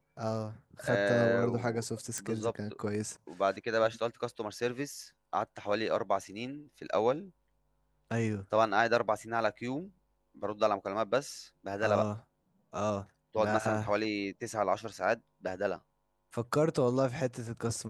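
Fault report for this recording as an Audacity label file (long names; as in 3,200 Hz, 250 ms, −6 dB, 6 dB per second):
2.180000	2.180000	click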